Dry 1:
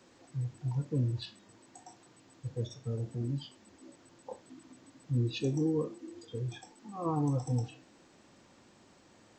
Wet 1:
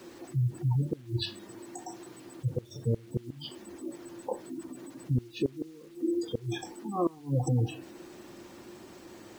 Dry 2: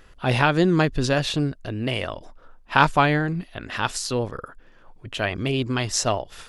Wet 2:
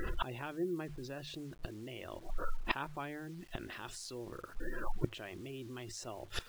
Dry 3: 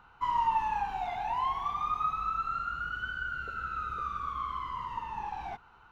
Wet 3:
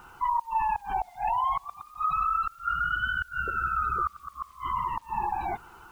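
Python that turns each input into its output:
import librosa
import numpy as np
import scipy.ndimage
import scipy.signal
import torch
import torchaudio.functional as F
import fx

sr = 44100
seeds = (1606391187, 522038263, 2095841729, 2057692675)

p1 = fx.hum_notches(x, sr, base_hz=50, count=3)
p2 = fx.spec_gate(p1, sr, threshold_db=-25, keep='strong')
p3 = fx.peak_eq(p2, sr, hz=350.0, db=12.0, octaves=0.24)
p4 = fx.over_compress(p3, sr, threshold_db=-34.0, ratio=-1.0)
p5 = p3 + (p4 * 10.0 ** (2.0 / 20.0))
p6 = fx.gate_flip(p5, sr, shuts_db=-18.0, range_db=-25)
y = fx.quant_dither(p6, sr, seeds[0], bits=10, dither='none')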